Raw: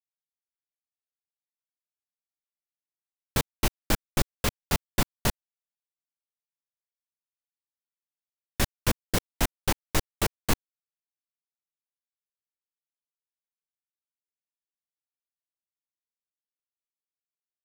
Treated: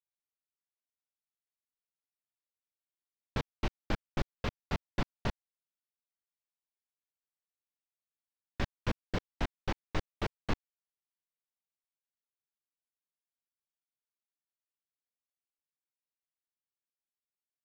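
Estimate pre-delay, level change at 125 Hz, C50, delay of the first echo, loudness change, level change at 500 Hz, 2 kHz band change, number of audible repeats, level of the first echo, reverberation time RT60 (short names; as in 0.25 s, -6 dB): none, -6.5 dB, none, none, -9.0 dB, -7.0 dB, -8.5 dB, none, none, none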